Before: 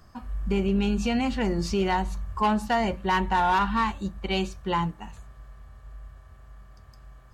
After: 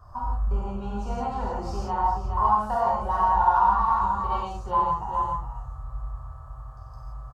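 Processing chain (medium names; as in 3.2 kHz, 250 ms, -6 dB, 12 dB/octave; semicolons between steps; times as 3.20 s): 1.89–2.34 s: distance through air 180 m; delay 417 ms -11.5 dB; compression, threshold -30 dBFS, peak gain reduction 10.5 dB; FFT filter 120 Hz 0 dB, 180 Hz -14 dB, 280 Hz -18 dB, 490 Hz -5 dB, 1.1 kHz +7 dB, 2.1 kHz -23 dB, 5.1 kHz -14 dB; gated-style reverb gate 200 ms flat, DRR -6.5 dB; trim +2.5 dB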